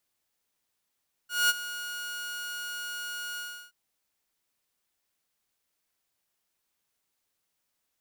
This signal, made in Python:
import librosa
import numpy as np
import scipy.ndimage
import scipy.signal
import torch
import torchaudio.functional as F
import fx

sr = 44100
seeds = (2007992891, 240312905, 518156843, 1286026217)

y = fx.adsr_tone(sr, wave='saw', hz=1440.0, attack_ms=204.0, decay_ms=30.0, sustain_db=-15.0, held_s=2.09, release_ms=336.0, level_db=-17.0)